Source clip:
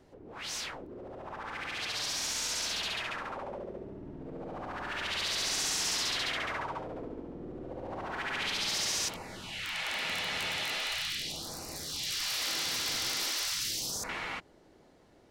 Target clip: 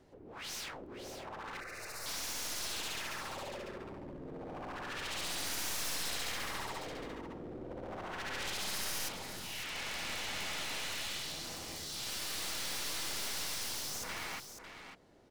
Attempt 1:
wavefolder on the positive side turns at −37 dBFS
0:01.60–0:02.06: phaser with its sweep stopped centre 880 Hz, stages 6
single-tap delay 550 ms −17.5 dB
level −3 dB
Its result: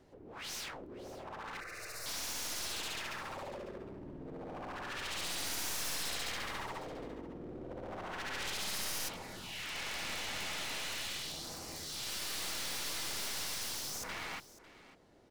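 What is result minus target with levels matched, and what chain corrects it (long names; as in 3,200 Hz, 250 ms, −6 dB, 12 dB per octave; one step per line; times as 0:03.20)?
echo-to-direct −8.5 dB
wavefolder on the positive side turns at −37 dBFS
0:01.60–0:02.06: phaser with its sweep stopped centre 880 Hz, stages 6
single-tap delay 550 ms −9 dB
level −3 dB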